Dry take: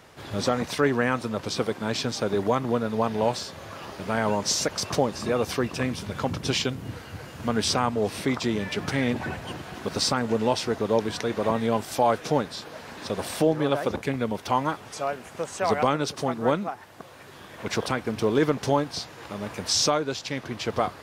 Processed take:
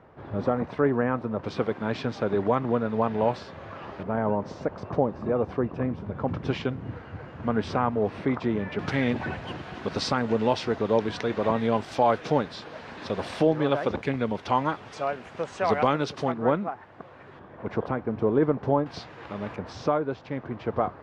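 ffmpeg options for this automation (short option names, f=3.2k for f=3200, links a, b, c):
-af "asetnsamples=n=441:p=0,asendcmd='1.44 lowpass f 2200;4.03 lowpass f 1000;6.28 lowpass f 1700;8.79 lowpass f 3700;16.32 lowpass f 1900;17.39 lowpass f 1100;18.86 lowpass f 2700;19.56 lowpass f 1300',lowpass=1.2k"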